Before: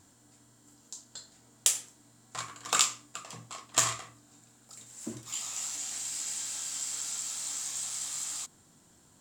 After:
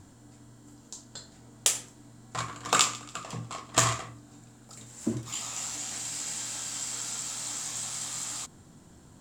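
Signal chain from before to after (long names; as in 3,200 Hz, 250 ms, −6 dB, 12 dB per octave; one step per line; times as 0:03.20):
spectral tilt −2 dB per octave
0:01.83–0:04.02: feedback echo with a swinging delay time 140 ms, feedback 48%, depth 55 cents, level −20 dB
level +6 dB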